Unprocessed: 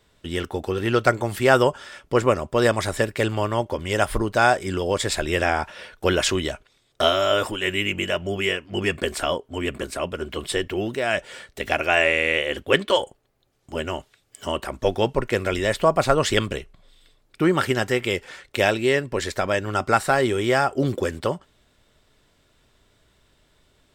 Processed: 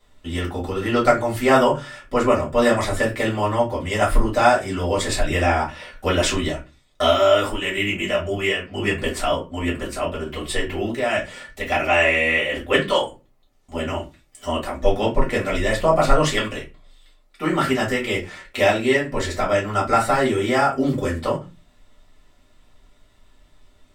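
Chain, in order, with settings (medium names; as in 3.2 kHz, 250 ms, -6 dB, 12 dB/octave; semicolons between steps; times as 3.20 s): 16.22–17.52 s: bass shelf 250 Hz -9.5 dB; reverberation RT60 0.25 s, pre-delay 3 ms, DRR -6 dB; trim -6.5 dB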